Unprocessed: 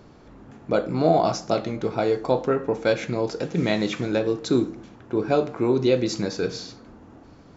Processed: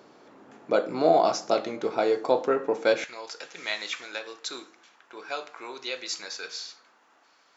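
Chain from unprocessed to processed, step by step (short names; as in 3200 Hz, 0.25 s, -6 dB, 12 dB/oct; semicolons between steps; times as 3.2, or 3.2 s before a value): HPF 350 Hz 12 dB/oct, from 3.04 s 1300 Hz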